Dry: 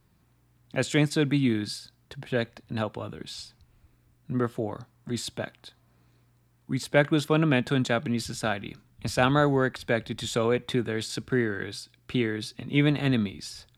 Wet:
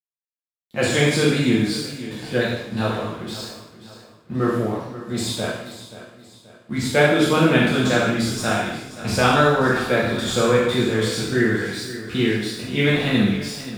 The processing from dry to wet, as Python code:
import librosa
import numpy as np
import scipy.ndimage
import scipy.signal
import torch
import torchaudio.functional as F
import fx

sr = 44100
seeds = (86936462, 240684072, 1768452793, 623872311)

p1 = fx.spec_trails(x, sr, decay_s=0.59)
p2 = fx.wow_flutter(p1, sr, seeds[0], rate_hz=2.1, depth_cents=26.0)
p3 = np.sign(p2) * np.maximum(np.abs(p2) - 10.0 ** (-46.5 / 20.0), 0.0)
p4 = p3 + fx.echo_feedback(p3, sr, ms=530, feedback_pct=41, wet_db=-14.5, dry=0)
y = fx.rev_double_slope(p4, sr, seeds[1], early_s=0.66, late_s=1.9, knee_db=-23, drr_db=-5.0)